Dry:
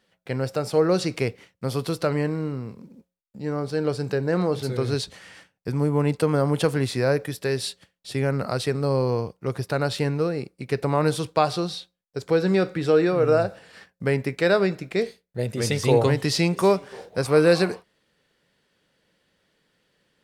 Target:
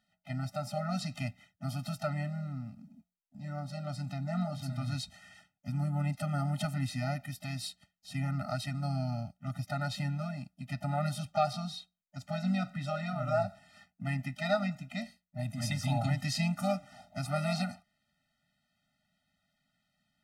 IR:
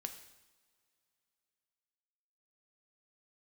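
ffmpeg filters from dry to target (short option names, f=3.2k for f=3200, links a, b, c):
-filter_complex "[0:a]asplit=2[a][b];[b]asetrate=55563,aresample=44100,atempo=0.793701,volume=-13dB[c];[a][c]amix=inputs=2:normalize=0,afftfilt=real='re*eq(mod(floor(b*sr/1024/300),2),0)':imag='im*eq(mod(floor(b*sr/1024/300),2),0)':win_size=1024:overlap=0.75,volume=-7dB"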